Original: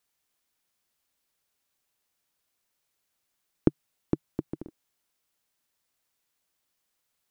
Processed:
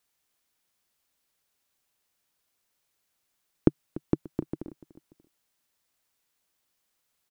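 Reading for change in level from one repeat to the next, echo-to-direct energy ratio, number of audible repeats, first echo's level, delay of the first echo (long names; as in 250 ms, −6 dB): −7.5 dB, −17.0 dB, 2, −17.5 dB, 292 ms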